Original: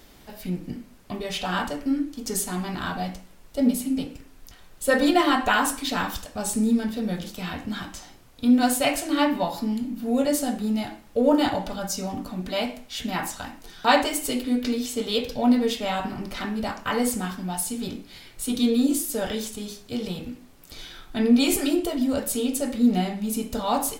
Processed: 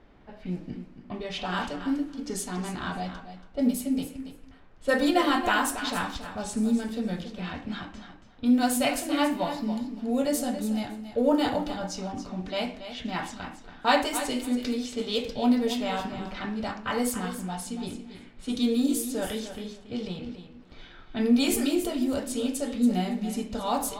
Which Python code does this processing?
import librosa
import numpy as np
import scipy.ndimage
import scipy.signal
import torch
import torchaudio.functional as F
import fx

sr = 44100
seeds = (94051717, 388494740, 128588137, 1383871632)

y = fx.env_lowpass(x, sr, base_hz=1700.0, full_db=-20.0)
y = fx.echo_feedback(y, sr, ms=280, feedback_pct=15, wet_db=-11)
y = y * 10.0 ** (-3.5 / 20.0)